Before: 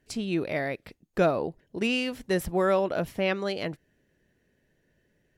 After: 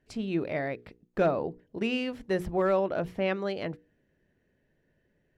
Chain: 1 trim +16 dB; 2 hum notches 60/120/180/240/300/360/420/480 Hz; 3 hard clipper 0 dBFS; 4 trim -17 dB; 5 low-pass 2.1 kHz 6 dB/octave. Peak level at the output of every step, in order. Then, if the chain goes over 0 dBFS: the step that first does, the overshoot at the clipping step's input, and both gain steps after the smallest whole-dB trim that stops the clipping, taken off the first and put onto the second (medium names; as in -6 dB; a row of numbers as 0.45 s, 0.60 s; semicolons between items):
+5.0 dBFS, +3.5 dBFS, 0.0 dBFS, -17.0 dBFS, -17.0 dBFS; step 1, 3.5 dB; step 1 +12 dB, step 4 -13 dB